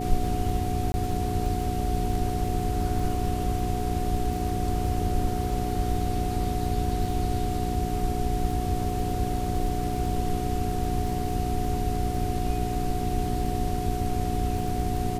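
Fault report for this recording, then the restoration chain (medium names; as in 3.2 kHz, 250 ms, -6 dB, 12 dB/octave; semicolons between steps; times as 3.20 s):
crackle 23 per s -33 dBFS
hum 60 Hz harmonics 7 -31 dBFS
whine 730 Hz -32 dBFS
0.92–0.94 s: dropout 20 ms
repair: de-click; band-stop 730 Hz, Q 30; de-hum 60 Hz, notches 7; interpolate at 0.92 s, 20 ms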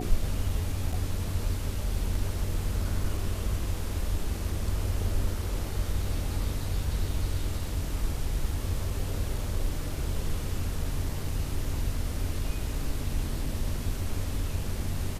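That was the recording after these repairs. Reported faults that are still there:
nothing left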